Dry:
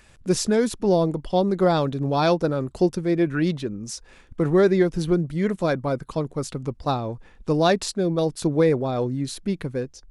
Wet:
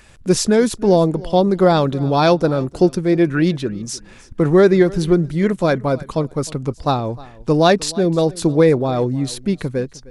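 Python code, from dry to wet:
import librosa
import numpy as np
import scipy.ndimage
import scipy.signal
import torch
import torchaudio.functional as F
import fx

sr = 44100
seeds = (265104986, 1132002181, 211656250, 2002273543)

y = fx.echo_feedback(x, sr, ms=308, feedback_pct=19, wet_db=-21)
y = y * librosa.db_to_amplitude(6.0)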